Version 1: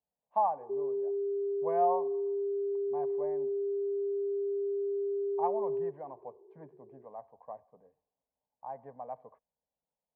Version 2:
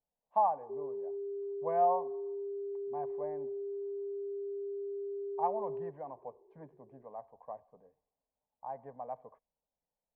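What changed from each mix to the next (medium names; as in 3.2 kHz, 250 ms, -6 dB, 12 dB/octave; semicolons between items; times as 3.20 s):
background -6.5 dB; master: remove high-pass 55 Hz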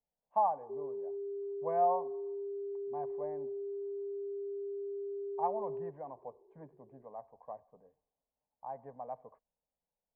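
master: add distance through air 300 m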